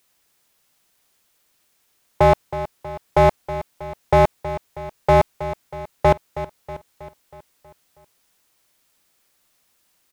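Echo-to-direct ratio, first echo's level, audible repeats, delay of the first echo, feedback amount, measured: -11.5 dB, -13.0 dB, 5, 0.32 s, 54%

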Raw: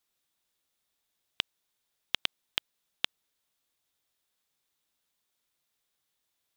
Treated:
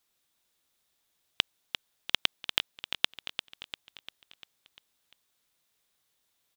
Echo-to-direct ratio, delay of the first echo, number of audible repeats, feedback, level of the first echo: -7.5 dB, 0.347 s, 5, 54%, -9.0 dB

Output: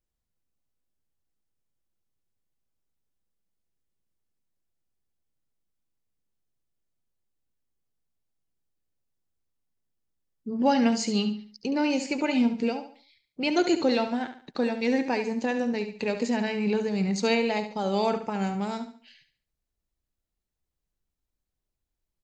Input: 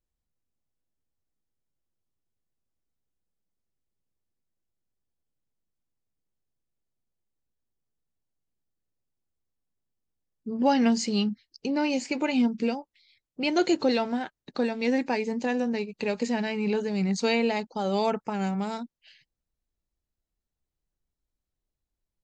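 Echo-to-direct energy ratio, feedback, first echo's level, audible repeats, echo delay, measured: -9.5 dB, 34%, -10.0 dB, 3, 71 ms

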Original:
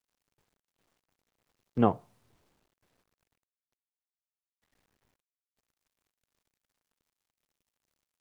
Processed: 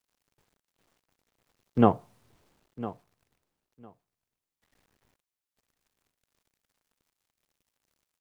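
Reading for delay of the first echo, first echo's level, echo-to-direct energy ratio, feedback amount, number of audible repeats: 1.005 s, -15.5 dB, -15.5 dB, 16%, 2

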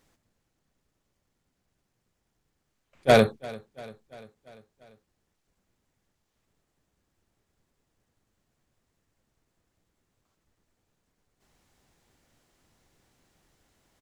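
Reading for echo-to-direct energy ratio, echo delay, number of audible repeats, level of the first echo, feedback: -19.0 dB, 0.344 s, 4, -21.0 dB, 60%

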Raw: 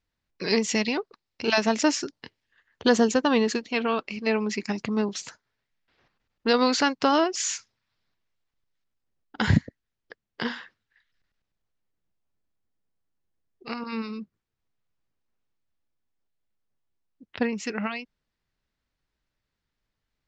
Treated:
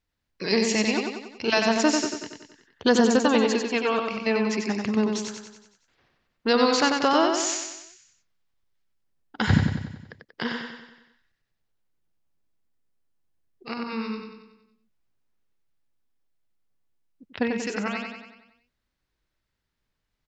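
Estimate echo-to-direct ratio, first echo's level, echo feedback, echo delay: -3.0 dB, -4.5 dB, 53%, 93 ms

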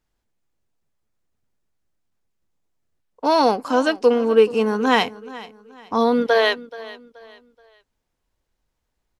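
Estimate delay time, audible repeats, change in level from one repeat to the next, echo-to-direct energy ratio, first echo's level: 0.428 s, 2, -9.5 dB, -18.0 dB, -18.5 dB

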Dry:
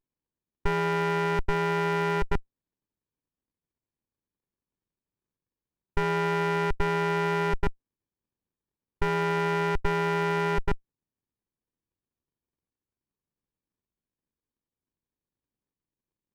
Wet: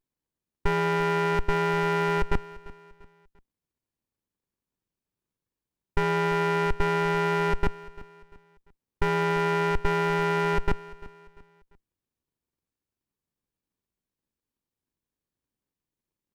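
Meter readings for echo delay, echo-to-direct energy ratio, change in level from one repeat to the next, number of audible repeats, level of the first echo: 0.345 s, -18.5 dB, -8.5 dB, 2, -19.0 dB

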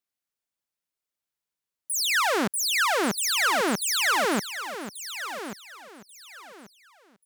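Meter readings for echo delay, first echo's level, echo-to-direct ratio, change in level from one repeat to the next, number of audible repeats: 1.136 s, -11.0 dB, -10.5 dB, -11.5 dB, 3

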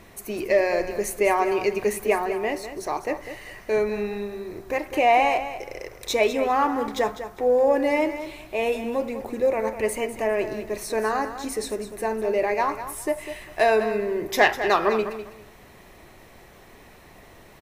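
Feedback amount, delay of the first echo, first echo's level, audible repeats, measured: 22%, 0.201 s, -11.0 dB, 2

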